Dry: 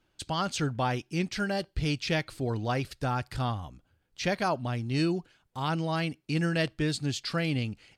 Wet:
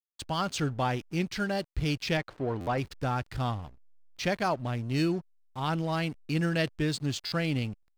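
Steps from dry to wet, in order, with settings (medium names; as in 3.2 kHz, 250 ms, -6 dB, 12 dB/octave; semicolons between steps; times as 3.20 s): hysteresis with a dead band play -39.5 dBFS; 2.17–2.78 s: overdrive pedal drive 13 dB, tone 1.1 kHz, clips at -18 dBFS; buffer glitch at 2.60/7.25 s, samples 512, times 5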